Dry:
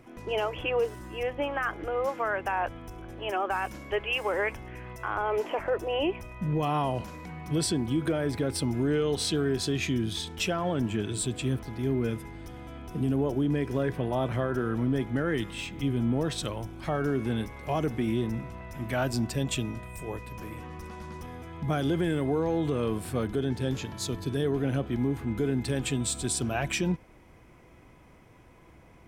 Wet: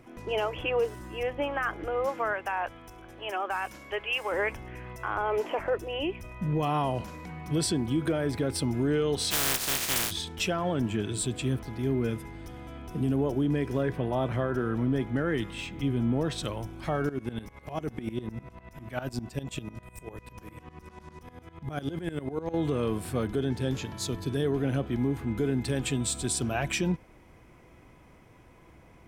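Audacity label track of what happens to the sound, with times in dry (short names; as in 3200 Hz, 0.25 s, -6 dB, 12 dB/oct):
2.330000	4.320000	low shelf 460 Hz -9 dB
5.750000	6.240000	bell 780 Hz -8 dB 1.8 oct
9.300000	10.100000	spectral contrast lowered exponent 0.14
13.810000	16.440000	high shelf 5000 Hz -4.5 dB
17.090000	22.540000	dB-ramp tremolo swelling 10 Hz, depth 18 dB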